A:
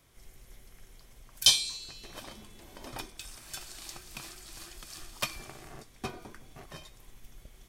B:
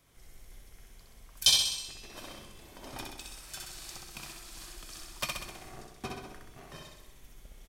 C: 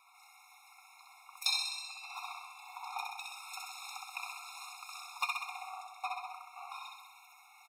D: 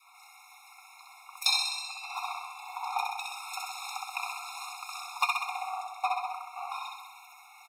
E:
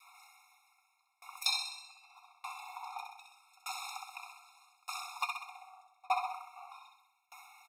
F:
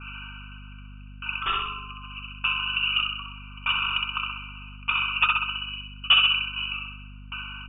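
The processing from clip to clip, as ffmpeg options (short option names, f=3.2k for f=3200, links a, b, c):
-af "aecho=1:1:64|128|192|256|320|384|448|512|576:0.708|0.425|0.255|0.153|0.0917|0.055|0.033|0.0198|0.0119,volume=-2.5dB"
-af "acompressor=threshold=-49dB:ratio=1.5,bass=f=250:g=-8,treble=f=4k:g=-11,afftfilt=real='re*eq(mod(floor(b*sr/1024/710),2),1)':imag='im*eq(mod(floor(b*sr/1024/710),2),1)':win_size=1024:overlap=0.75,volume=11.5dB"
-af "adynamicequalizer=threshold=0.002:dfrequency=680:dqfactor=0.94:tfrequency=680:tqfactor=0.94:attack=5:release=100:ratio=0.375:range=2.5:mode=boostabove:tftype=bell,volume=5.5dB"
-af "aeval=exprs='val(0)*pow(10,-30*if(lt(mod(0.82*n/s,1),2*abs(0.82)/1000),1-mod(0.82*n/s,1)/(2*abs(0.82)/1000),(mod(0.82*n/s,1)-2*abs(0.82)/1000)/(1-2*abs(0.82)/1000))/20)':c=same,volume=1dB"
-filter_complex "[0:a]asplit=2[a][b];[b]highpass=f=720:p=1,volume=20dB,asoftclip=type=tanh:threshold=-15.5dB[c];[a][c]amix=inputs=2:normalize=0,lowpass=f=1.7k:p=1,volume=-6dB,lowpass=f=3.1k:t=q:w=0.5098,lowpass=f=3.1k:t=q:w=0.6013,lowpass=f=3.1k:t=q:w=0.9,lowpass=f=3.1k:t=q:w=2.563,afreqshift=-3700,aeval=exprs='val(0)+0.00316*(sin(2*PI*50*n/s)+sin(2*PI*2*50*n/s)/2+sin(2*PI*3*50*n/s)/3+sin(2*PI*4*50*n/s)/4+sin(2*PI*5*50*n/s)/5)':c=same,volume=8.5dB"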